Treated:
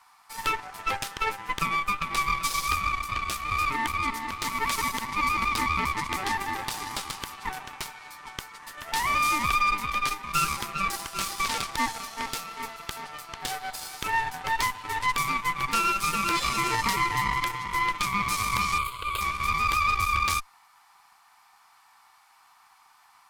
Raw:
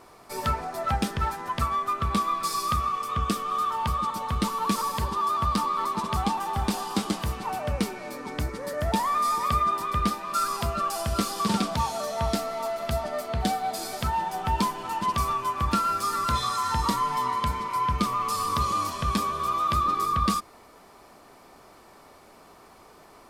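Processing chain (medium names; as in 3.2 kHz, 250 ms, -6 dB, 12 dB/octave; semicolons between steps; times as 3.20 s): elliptic high-pass 820 Hz, stop band 40 dB; Chebyshev shaper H 5 -28 dB, 6 -11 dB, 7 -23 dB, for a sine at -13.5 dBFS; 18.78–19.21 s: static phaser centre 1.2 kHz, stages 8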